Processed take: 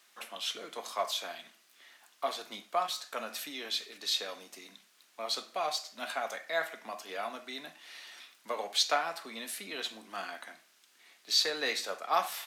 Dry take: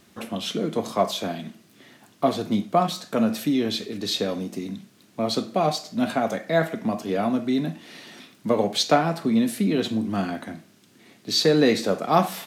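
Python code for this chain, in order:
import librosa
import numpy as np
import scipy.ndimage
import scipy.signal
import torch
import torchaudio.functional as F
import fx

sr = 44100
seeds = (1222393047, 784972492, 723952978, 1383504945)

y = scipy.signal.sosfilt(scipy.signal.butter(2, 1000.0, 'highpass', fs=sr, output='sos'), x)
y = fx.band_widen(y, sr, depth_pct=40, at=(11.5, 12.14))
y = F.gain(torch.from_numpy(y), -4.0).numpy()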